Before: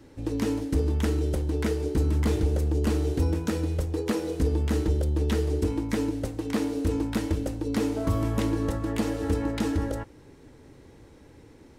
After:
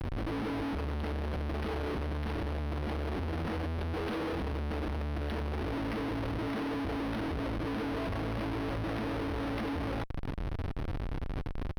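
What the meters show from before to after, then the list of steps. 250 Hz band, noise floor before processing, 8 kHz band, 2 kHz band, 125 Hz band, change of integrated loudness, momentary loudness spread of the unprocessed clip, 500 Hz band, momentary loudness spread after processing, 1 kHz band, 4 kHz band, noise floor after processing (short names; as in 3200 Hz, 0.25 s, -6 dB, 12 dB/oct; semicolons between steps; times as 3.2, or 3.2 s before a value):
-7.5 dB, -52 dBFS, under -15 dB, 0.0 dB, -8.0 dB, -8.0 dB, 4 LU, -7.0 dB, 4 LU, +0.5 dB, -3.5 dB, -36 dBFS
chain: in parallel at +0.5 dB: compressor 6:1, threshold -38 dBFS, peak gain reduction 17 dB; on the sum: Schmitt trigger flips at -39 dBFS; decimation joined by straight lines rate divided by 6×; gain -8.5 dB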